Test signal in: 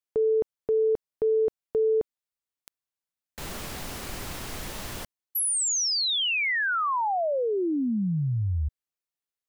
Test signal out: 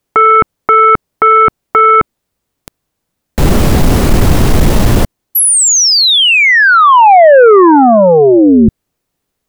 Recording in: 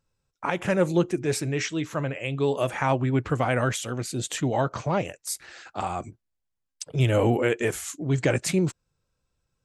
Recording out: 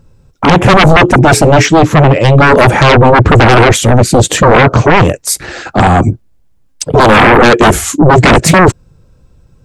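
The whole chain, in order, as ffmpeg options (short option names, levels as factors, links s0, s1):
-af "tiltshelf=f=690:g=8,aeval=exprs='0.562*sin(PI/2*7.94*val(0)/0.562)':c=same,volume=1.58"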